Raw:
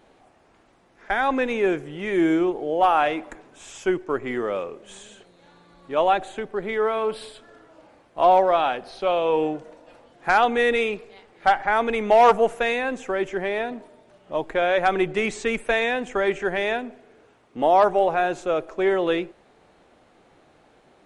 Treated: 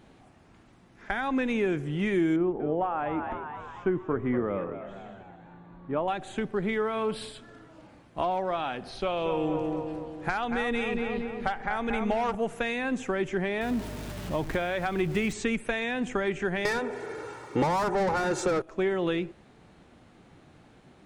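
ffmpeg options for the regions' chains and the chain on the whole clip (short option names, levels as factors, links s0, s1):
-filter_complex "[0:a]asettb=1/sr,asplit=3[s0][s1][s2];[s0]atrim=end=2.364[s3];[s1]atrim=start=2.36:end=6.08,asetpts=PTS-STARTPTS,afade=t=in:d=0.004:c=qsin,afade=t=out:st=3.716:d=0.004:c=qsin,lowpass=1400,asplit=7[s4][s5][s6][s7][s8][s9][s10];[s5]adelay=237,afreqshift=79,volume=0.251[s11];[s6]adelay=474,afreqshift=158,volume=0.133[s12];[s7]adelay=711,afreqshift=237,volume=0.0708[s13];[s8]adelay=948,afreqshift=316,volume=0.0376[s14];[s9]adelay=1185,afreqshift=395,volume=0.0197[s15];[s10]adelay=1422,afreqshift=474,volume=0.0105[s16];[s4][s11][s12][s13][s14][s15][s16]amix=inputs=7:normalize=0,atrim=end_sample=164052[s17];[s2]atrim=start=6.076[s18];[s3][s17]acrossfade=d=0.004:c1=hsin:c2=qsin[s19];[s19][s18]acrossfade=d=0.004:c1=qsin:c2=hsin,asettb=1/sr,asplit=3[s20][s21][s22];[s20]atrim=end=8.944[s23];[s21]atrim=start=8.94:end=12.35,asetpts=PTS-STARTPTS,afade=t=in:d=0.004:c=qsin,afade=t=out:st=3.406:d=0.004:c=qsin,lowshelf=f=110:t=q:w=1.5:g=6.5,asplit=2[s24][s25];[s25]adelay=232,lowpass=f=1800:p=1,volume=0.501,asplit=2[s26][s27];[s27]adelay=232,lowpass=f=1800:p=1,volume=0.54,asplit=2[s28][s29];[s29]adelay=232,lowpass=f=1800:p=1,volume=0.54,asplit=2[s30][s31];[s31]adelay=232,lowpass=f=1800:p=1,volume=0.54,asplit=2[s32][s33];[s33]adelay=232,lowpass=f=1800:p=1,volume=0.54,asplit=2[s34][s35];[s35]adelay=232,lowpass=f=1800:p=1,volume=0.54,asplit=2[s36][s37];[s37]adelay=232,lowpass=f=1800:p=1,volume=0.54[s38];[s24][s26][s28][s30][s32][s34][s36][s38]amix=inputs=8:normalize=0,atrim=end_sample=150381[s39];[s22]atrim=start=12.346[s40];[s23][s39]acrossfade=d=0.004:c1=hsin:c2=qsin[s41];[s41][s40]acrossfade=d=0.004:c1=qsin:c2=hsin,asettb=1/sr,asplit=3[s42][s43][s44];[s42]atrim=end=13.614[s45];[s43]atrim=start=13.61:end=15.33,asetpts=PTS-STARTPTS,afade=t=in:d=0.004:c=qsin,afade=t=out:st=1.716:d=0.004:c=qsin,aeval=exprs='val(0)+0.5*0.0168*sgn(val(0))':c=same,aeval=exprs='val(0)+0.00447*(sin(2*PI*50*n/s)+sin(2*PI*2*50*n/s)/2+sin(2*PI*3*50*n/s)/3+sin(2*PI*4*50*n/s)/4+sin(2*PI*5*50*n/s)/5)':c=same[s46];[s44]atrim=start=15.326[s47];[s45][s46]acrossfade=d=0.004:c1=hsin:c2=qsin[s48];[s48][s47]acrossfade=d=0.004:c1=qsin:c2=hsin,asettb=1/sr,asplit=3[s49][s50][s51];[s49]atrim=end=16.654[s52];[s50]atrim=start=16.65:end=18.62,asetpts=PTS-STARTPTS,afade=t=in:d=0.004:c=qsin,afade=t=out:st=1.966:d=0.004:c=qsin,aecho=1:1:2.2:0.74,atrim=end_sample=86877,asplit=2[s53][s54];[s54]highpass=f=720:p=1,volume=20,asoftclip=type=tanh:threshold=0.596[s55];[s53][s55]amix=inputs=2:normalize=0,lowpass=f=5800:p=1,volume=0.501,equalizer=f=3000:w=1.5:g=-11[s56];[s51]atrim=start=18.616[s57];[s52][s56]acrossfade=d=0.004:c1=hsin:c2=qsin[s58];[s58][s57]acrossfade=d=0.004:c1=qsin:c2=hsin,equalizer=f=510:w=0.76:g=-8.5,acompressor=threshold=0.0355:ratio=6,equalizer=f=140:w=0.31:g=10"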